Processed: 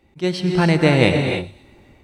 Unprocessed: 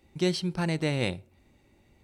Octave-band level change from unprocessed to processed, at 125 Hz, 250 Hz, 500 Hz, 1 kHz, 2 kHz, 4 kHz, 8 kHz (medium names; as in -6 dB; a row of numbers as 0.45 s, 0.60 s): +12.0 dB, +11.5 dB, +12.5 dB, +14.0 dB, +13.5 dB, +9.0 dB, +4.5 dB